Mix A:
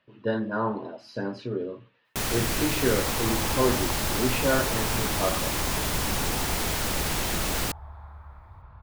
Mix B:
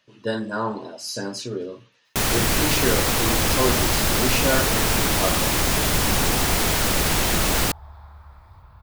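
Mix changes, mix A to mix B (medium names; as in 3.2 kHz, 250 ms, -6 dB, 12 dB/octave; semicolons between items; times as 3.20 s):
speech: remove distance through air 400 m; first sound +7.0 dB; second sound: remove low-pass 2.4 kHz 12 dB/octave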